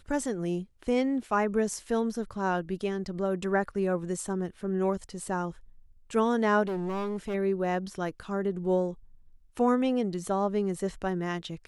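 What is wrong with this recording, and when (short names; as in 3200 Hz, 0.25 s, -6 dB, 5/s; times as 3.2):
6.63–7.35 clipped -28.5 dBFS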